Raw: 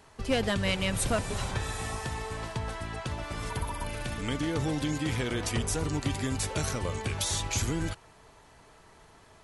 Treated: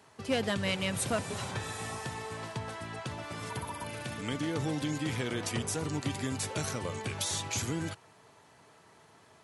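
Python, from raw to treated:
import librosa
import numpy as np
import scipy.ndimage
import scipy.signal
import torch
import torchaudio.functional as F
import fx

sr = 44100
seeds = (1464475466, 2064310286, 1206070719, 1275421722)

y = scipy.signal.sosfilt(scipy.signal.butter(4, 100.0, 'highpass', fs=sr, output='sos'), x)
y = F.gain(torch.from_numpy(y), -2.5).numpy()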